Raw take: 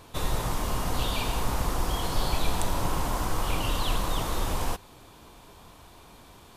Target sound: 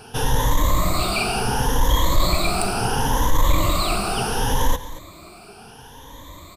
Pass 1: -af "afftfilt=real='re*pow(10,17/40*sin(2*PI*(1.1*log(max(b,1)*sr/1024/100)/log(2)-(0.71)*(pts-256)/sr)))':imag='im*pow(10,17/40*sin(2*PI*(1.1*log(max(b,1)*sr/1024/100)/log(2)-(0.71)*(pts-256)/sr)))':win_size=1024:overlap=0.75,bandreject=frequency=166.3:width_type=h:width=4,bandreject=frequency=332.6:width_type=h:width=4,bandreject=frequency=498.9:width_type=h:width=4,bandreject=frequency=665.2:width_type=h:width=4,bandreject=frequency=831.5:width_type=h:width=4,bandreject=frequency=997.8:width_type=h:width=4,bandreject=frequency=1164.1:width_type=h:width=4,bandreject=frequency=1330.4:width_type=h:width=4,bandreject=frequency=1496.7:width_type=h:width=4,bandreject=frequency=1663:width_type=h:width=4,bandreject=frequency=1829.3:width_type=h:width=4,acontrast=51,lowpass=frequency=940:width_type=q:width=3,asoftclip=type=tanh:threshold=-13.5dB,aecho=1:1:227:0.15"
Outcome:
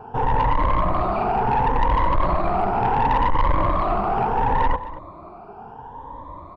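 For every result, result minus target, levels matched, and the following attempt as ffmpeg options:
soft clipping: distortion +11 dB; 1,000 Hz band +5.0 dB
-af "afftfilt=real='re*pow(10,17/40*sin(2*PI*(1.1*log(max(b,1)*sr/1024/100)/log(2)-(0.71)*(pts-256)/sr)))':imag='im*pow(10,17/40*sin(2*PI*(1.1*log(max(b,1)*sr/1024/100)/log(2)-(0.71)*(pts-256)/sr)))':win_size=1024:overlap=0.75,bandreject=frequency=166.3:width_type=h:width=4,bandreject=frequency=332.6:width_type=h:width=4,bandreject=frequency=498.9:width_type=h:width=4,bandreject=frequency=665.2:width_type=h:width=4,bandreject=frequency=831.5:width_type=h:width=4,bandreject=frequency=997.8:width_type=h:width=4,bandreject=frequency=1164.1:width_type=h:width=4,bandreject=frequency=1330.4:width_type=h:width=4,bandreject=frequency=1496.7:width_type=h:width=4,bandreject=frequency=1663:width_type=h:width=4,bandreject=frequency=1829.3:width_type=h:width=4,acontrast=51,lowpass=frequency=940:width_type=q:width=3,asoftclip=type=tanh:threshold=-6dB,aecho=1:1:227:0.15"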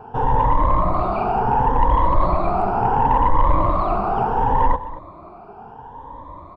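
1,000 Hz band +5.0 dB
-af "afftfilt=real='re*pow(10,17/40*sin(2*PI*(1.1*log(max(b,1)*sr/1024/100)/log(2)-(0.71)*(pts-256)/sr)))':imag='im*pow(10,17/40*sin(2*PI*(1.1*log(max(b,1)*sr/1024/100)/log(2)-(0.71)*(pts-256)/sr)))':win_size=1024:overlap=0.75,bandreject=frequency=166.3:width_type=h:width=4,bandreject=frequency=332.6:width_type=h:width=4,bandreject=frequency=498.9:width_type=h:width=4,bandreject=frequency=665.2:width_type=h:width=4,bandreject=frequency=831.5:width_type=h:width=4,bandreject=frequency=997.8:width_type=h:width=4,bandreject=frequency=1164.1:width_type=h:width=4,bandreject=frequency=1330.4:width_type=h:width=4,bandreject=frequency=1496.7:width_type=h:width=4,bandreject=frequency=1663:width_type=h:width=4,bandreject=frequency=1829.3:width_type=h:width=4,acontrast=51,asoftclip=type=tanh:threshold=-6dB,aecho=1:1:227:0.15"

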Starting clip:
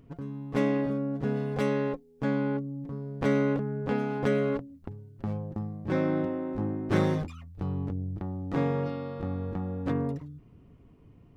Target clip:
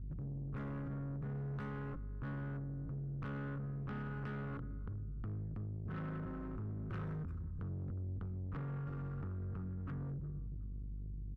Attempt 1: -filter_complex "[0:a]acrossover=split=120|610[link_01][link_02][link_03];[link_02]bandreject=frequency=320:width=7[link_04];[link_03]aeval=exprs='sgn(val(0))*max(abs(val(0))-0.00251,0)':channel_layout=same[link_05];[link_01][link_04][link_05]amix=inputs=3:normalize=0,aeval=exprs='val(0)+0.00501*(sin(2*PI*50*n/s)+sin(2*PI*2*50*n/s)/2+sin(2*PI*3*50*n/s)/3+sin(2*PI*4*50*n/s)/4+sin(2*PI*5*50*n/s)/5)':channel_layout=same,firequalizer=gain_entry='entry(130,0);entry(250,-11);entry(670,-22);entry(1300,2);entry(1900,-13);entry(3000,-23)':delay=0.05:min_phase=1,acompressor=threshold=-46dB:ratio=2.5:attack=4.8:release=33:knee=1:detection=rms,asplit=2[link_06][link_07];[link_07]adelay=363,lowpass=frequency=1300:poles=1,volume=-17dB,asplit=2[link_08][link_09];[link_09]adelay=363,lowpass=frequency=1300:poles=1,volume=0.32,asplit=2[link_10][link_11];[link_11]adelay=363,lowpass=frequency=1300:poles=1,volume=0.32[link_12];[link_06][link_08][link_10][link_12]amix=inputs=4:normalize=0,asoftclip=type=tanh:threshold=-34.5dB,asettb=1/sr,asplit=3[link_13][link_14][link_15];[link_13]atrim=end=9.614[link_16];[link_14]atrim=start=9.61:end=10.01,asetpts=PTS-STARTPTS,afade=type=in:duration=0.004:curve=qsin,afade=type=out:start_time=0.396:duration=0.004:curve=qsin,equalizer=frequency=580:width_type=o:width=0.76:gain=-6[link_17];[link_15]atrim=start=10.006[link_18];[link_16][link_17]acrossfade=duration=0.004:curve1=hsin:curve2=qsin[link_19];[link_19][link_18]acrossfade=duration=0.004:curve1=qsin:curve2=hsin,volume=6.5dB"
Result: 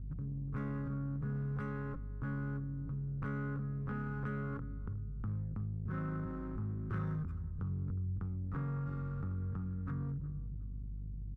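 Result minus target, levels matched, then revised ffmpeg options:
soft clipping: distortion −13 dB
-filter_complex "[0:a]acrossover=split=120|610[link_01][link_02][link_03];[link_02]bandreject=frequency=320:width=7[link_04];[link_03]aeval=exprs='sgn(val(0))*max(abs(val(0))-0.00251,0)':channel_layout=same[link_05];[link_01][link_04][link_05]amix=inputs=3:normalize=0,aeval=exprs='val(0)+0.00501*(sin(2*PI*50*n/s)+sin(2*PI*2*50*n/s)/2+sin(2*PI*3*50*n/s)/3+sin(2*PI*4*50*n/s)/4+sin(2*PI*5*50*n/s)/5)':channel_layout=same,firequalizer=gain_entry='entry(130,0);entry(250,-11);entry(670,-22);entry(1300,2);entry(1900,-13);entry(3000,-23)':delay=0.05:min_phase=1,acompressor=threshold=-46dB:ratio=2.5:attack=4.8:release=33:knee=1:detection=rms,asplit=2[link_06][link_07];[link_07]adelay=363,lowpass=frequency=1300:poles=1,volume=-17dB,asplit=2[link_08][link_09];[link_09]adelay=363,lowpass=frequency=1300:poles=1,volume=0.32,asplit=2[link_10][link_11];[link_11]adelay=363,lowpass=frequency=1300:poles=1,volume=0.32[link_12];[link_06][link_08][link_10][link_12]amix=inputs=4:normalize=0,asoftclip=type=tanh:threshold=-44.5dB,asettb=1/sr,asplit=3[link_13][link_14][link_15];[link_13]atrim=end=9.614[link_16];[link_14]atrim=start=9.61:end=10.01,asetpts=PTS-STARTPTS,afade=type=in:duration=0.004:curve=qsin,afade=type=out:start_time=0.396:duration=0.004:curve=qsin,equalizer=frequency=580:width_type=o:width=0.76:gain=-6[link_17];[link_15]atrim=start=10.006[link_18];[link_16][link_17]acrossfade=duration=0.004:curve1=hsin:curve2=qsin[link_19];[link_19][link_18]acrossfade=duration=0.004:curve1=qsin:curve2=hsin,volume=6.5dB"

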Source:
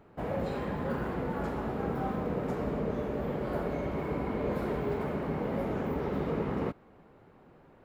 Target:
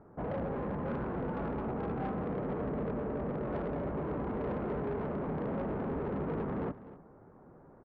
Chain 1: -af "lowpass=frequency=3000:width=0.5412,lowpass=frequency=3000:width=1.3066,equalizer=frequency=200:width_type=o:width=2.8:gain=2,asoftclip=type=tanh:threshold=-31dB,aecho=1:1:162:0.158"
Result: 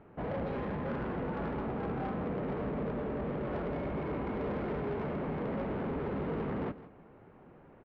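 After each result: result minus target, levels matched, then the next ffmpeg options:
echo 89 ms early; 4,000 Hz band +6.5 dB
-af "lowpass=frequency=3000:width=0.5412,lowpass=frequency=3000:width=1.3066,equalizer=frequency=200:width_type=o:width=2.8:gain=2,asoftclip=type=tanh:threshold=-31dB,aecho=1:1:251:0.158"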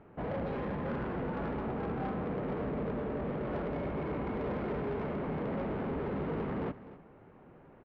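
4,000 Hz band +6.5 dB
-af "lowpass=frequency=1500:width=0.5412,lowpass=frequency=1500:width=1.3066,equalizer=frequency=200:width_type=o:width=2.8:gain=2,asoftclip=type=tanh:threshold=-31dB,aecho=1:1:251:0.158"

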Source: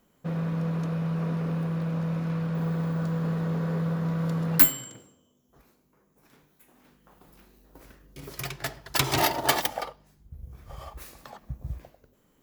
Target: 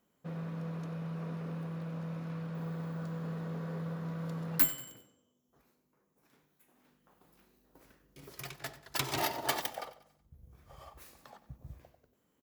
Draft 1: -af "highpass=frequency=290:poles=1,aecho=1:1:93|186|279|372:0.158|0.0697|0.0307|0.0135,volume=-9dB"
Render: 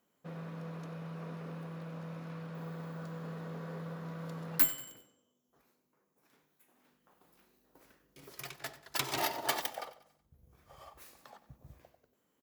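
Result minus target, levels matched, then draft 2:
125 Hz band −4.0 dB
-af "highpass=frequency=100:poles=1,aecho=1:1:93|186|279|372:0.158|0.0697|0.0307|0.0135,volume=-9dB"

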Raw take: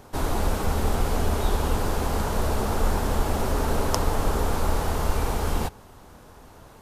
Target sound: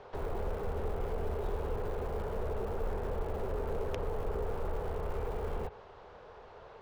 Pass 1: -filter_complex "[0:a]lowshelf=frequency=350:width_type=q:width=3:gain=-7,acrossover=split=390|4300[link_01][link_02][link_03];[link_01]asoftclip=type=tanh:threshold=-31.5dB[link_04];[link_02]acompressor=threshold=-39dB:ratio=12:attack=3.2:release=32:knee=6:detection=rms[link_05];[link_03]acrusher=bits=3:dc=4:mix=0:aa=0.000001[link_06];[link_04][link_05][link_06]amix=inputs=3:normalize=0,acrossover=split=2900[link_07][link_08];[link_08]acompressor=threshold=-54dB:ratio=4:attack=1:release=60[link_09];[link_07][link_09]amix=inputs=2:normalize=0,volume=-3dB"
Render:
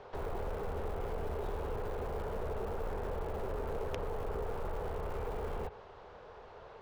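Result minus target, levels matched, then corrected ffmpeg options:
soft clipping: distortion +7 dB
-filter_complex "[0:a]lowshelf=frequency=350:width_type=q:width=3:gain=-7,acrossover=split=390|4300[link_01][link_02][link_03];[link_01]asoftclip=type=tanh:threshold=-24.5dB[link_04];[link_02]acompressor=threshold=-39dB:ratio=12:attack=3.2:release=32:knee=6:detection=rms[link_05];[link_03]acrusher=bits=3:dc=4:mix=0:aa=0.000001[link_06];[link_04][link_05][link_06]amix=inputs=3:normalize=0,acrossover=split=2900[link_07][link_08];[link_08]acompressor=threshold=-54dB:ratio=4:attack=1:release=60[link_09];[link_07][link_09]amix=inputs=2:normalize=0,volume=-3dB"

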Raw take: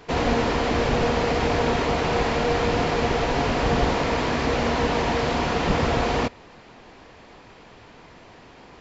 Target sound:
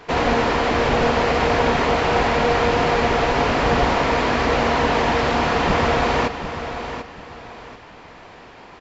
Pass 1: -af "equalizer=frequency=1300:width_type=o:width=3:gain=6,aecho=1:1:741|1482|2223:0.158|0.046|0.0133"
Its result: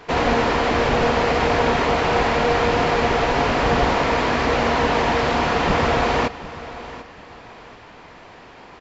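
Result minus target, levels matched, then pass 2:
echo-to-direct −6 dB
-af "equalizer=frequency=1300:width_type=o:width=3:gain=6,aecho=1:1:741|1482|2223:0.316|0.0917|0.0266"

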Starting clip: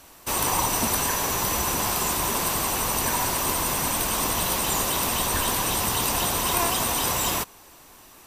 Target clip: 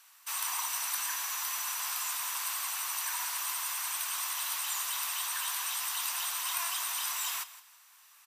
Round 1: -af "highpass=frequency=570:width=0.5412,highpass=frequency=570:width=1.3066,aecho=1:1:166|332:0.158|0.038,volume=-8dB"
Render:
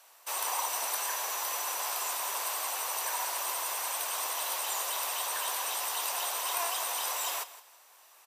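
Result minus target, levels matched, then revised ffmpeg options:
500 Hz band +17.0 dB
-af "highpass=frequency=1100:width=0.5412,highpass=frequency=1100:width=1.3066,aecho=1:1:166|332:0.158|0.038,volume=-8dB"

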